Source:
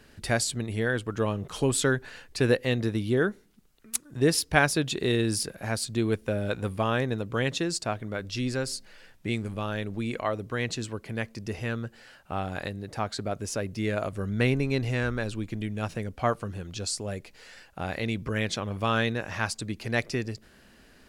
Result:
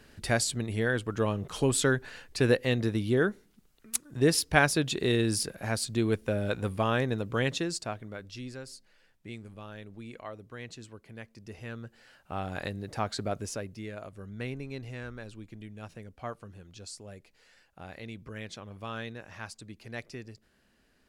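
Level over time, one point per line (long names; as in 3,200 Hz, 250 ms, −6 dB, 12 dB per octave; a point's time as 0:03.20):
0:07.45 −1 dB
0:08.61 −13 dB
0:11.27 −13 dB
0:12.70 −1 dB
0:13.36 −1 dB
0:13.91 −12.5 dB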